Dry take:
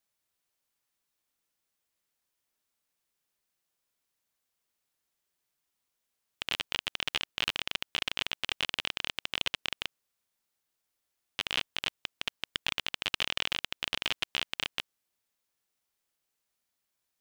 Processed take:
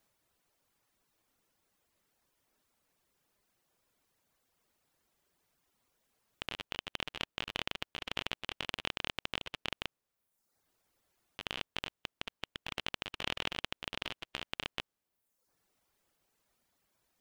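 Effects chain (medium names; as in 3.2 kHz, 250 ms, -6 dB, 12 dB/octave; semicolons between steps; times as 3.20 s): reverb removal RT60 0.75 s; compressor with a negative ratio -41 dBFS, ratio -1; tilt shelf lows +5 dB, about 1.5 kHz; trim +3 dB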